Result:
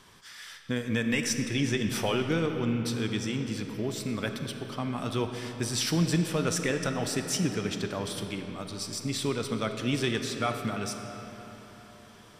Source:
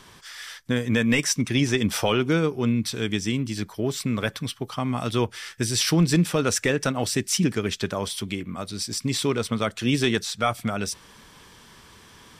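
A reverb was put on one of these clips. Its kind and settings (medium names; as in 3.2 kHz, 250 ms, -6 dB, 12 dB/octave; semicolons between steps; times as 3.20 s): algorithmic reverb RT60 4.5 s, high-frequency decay 0.6×, pre-delay 0 ms, DRR 5.5 dB; trim -6.5 dB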